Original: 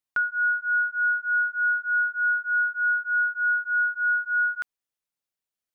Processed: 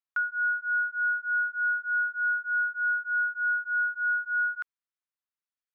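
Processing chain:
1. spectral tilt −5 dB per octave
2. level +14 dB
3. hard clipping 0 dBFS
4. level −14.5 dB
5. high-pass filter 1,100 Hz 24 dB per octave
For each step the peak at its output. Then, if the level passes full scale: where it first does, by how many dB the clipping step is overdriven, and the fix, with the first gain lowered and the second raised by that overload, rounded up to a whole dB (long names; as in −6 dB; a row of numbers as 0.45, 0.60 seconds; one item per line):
−16.5, −2.5, −2.5, −17.0, −21.5 dBFS
no step passes full scale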